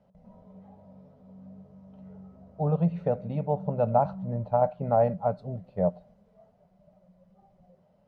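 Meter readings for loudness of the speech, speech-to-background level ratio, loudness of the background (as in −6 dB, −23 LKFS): −28.0 LKFS, 19.0 dB, −47.0 LKFS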